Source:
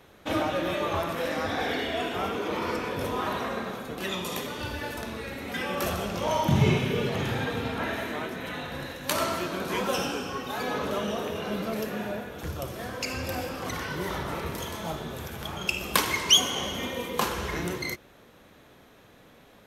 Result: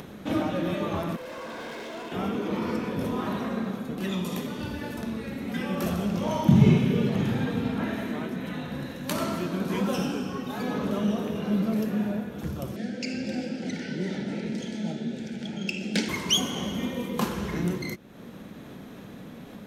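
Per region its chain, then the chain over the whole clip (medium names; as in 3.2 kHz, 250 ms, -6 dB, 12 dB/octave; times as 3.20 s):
1.16–2.12 s: comb filter that takes the minimum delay 1.9 ms + rippled Chebyshev high-pass 220 Hz, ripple 6 dB + hard clipper -34 dBFS
12.76–16.09 s: Butterworth band-stop 1.1 kHz, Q 2.1 + cabinet simulation 200–7700 Hz, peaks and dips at 220 Hz +7 dB, 720 Hz -4 dB, 1.1 kHz -9 dB, 2.2 kHz +3 dB, 4.6 kHz +4 dB + overload inside the chain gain 11 dB
whole clip: peaking EQ 200 Hz +14.5 dB 1.4 oct; upward compressor, threshold -27 dBFS; trim -5 dB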